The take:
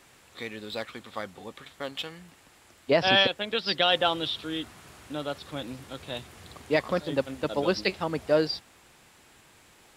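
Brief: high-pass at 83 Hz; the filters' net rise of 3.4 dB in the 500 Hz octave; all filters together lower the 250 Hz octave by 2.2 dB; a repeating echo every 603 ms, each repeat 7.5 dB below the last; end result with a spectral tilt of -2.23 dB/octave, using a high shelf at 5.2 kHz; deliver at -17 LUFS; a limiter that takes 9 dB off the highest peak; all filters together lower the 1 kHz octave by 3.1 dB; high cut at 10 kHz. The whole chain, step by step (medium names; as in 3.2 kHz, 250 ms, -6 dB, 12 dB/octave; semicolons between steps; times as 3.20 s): high-pass 83 Hz; low-pass 10 kHz; peaking EQ 250 Hz -6 dB; peaking EQ 500 Hz +8 dB; peaking EQ 1 kHz -9 dB; treble shelf 5.2 kHz -3 dB; peak limiter -18.5 dBFS; feedback delay 603 ms, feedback 42%, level -7.5 dB; trim +14.5 dB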